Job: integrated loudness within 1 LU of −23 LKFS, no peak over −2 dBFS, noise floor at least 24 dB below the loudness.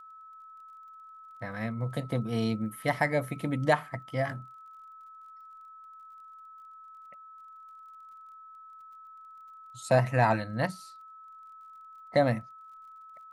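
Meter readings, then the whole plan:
crackle rate 27 per second; interfering tone 1,300 Hz; level of the tone −47 dBFS; integrated loudness −29.5 LKFS; sample peak −11.5 dBFS; target loudness −23.0 LKFS
→ click removal
notch filter 1,300 Hz, Q 30
level +6.5 dB

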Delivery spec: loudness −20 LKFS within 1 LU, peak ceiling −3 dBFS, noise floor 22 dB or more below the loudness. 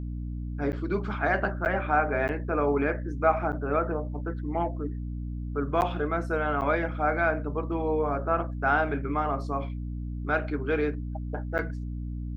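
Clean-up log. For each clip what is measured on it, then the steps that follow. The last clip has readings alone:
number of dropouts 7; longest dropout 9.4 ms; mains hum 60 Hz; hum harmonics up to 300 Hz; level of the hum −31 dBFS; integrated loudness −28.5 LKFS; sample peak −10.0 dBFS; target loudness −20.0 LKFS
→ repair the gap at 0:00.72/0:01.65/0:02.28/0:03.52/0:05.81/0:06.61/0:11.58, 9.4 ms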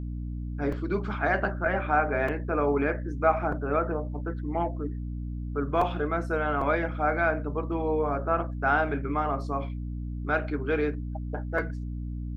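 number of dropouts 0; mains hum 60 Hz; hum harmonics up to 300 Hz; level of the hum −31 dBFS
→ hum removal 60 Hz, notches 5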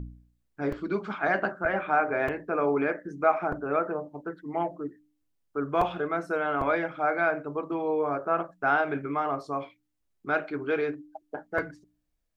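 mains hum none found; integrated loudness −29.0 LKFS; sample peak −10.5 dBFS; target loudness −20.0 LKFS
→ level +9 dB
brickwall limiter −3 dBFS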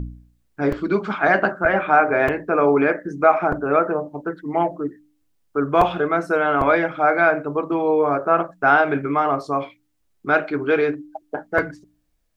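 integrated loudness −20.0 LKFS; sample peak −3.0 dBFS; background noise floor −67 dBFS

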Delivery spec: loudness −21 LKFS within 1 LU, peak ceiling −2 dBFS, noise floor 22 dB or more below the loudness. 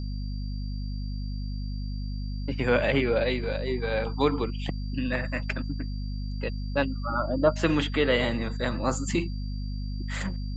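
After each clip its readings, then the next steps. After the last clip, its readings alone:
mains hum 50 Hz; hum harmonics up to 250 Hz; level of the hum −29 dBFS; interfering tone 4,700 Hz; level of the tone −49 dBFS; integrated loudness −29.0 LKFS; sample peak −9.0 dBFS; target loudness −21.0 LKFS
→ mains-hum notches 50/100/150/200/250 Hz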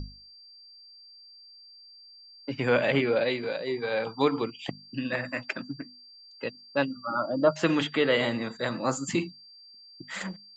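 mains hum none found; interfering tone 4,700 Hz; level of the tone −49 dBFS
→ notch filter 4,700 Hz, Q 30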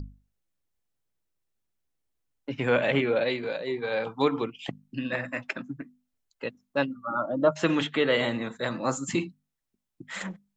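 interfering tone none found; integrated loudness −28.5 LKFS; sample peak −10.5 dBFS; target loudness −21.0 LKFS
→ level +7.5 dB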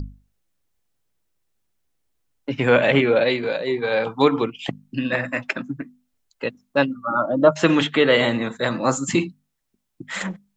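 integrated loudness −21.0 LKFS; sample peak −3.0 dBFS; background noise floor −75 dBFS

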